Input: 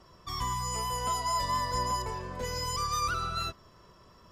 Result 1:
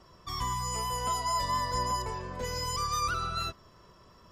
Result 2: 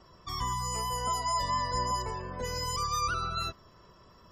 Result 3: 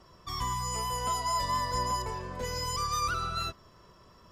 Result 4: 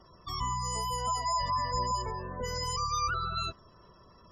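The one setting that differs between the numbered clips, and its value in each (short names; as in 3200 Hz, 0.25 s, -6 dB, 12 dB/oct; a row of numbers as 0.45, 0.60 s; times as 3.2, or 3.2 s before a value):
spectral gate, under each frame's peak: -45, -30, -60, -20 dB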